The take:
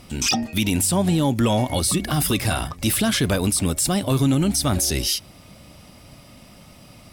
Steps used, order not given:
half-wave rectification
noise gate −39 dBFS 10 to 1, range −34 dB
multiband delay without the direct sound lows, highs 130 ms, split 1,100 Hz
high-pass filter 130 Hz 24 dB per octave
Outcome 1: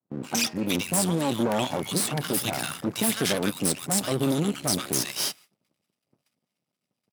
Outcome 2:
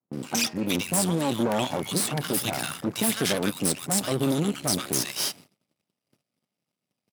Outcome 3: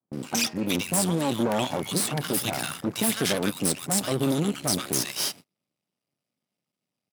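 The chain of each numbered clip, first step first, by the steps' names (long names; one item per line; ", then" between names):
noise gate, then multiband delay without the direct sound, then half-wave rectification, then high-pass filter
multiband delay without the direct sound, then noise gate, then half-wave rectification, then high-pass filter
multiband delay without the direct sound, then half-wave rectification, then high-pass filter, then noise gate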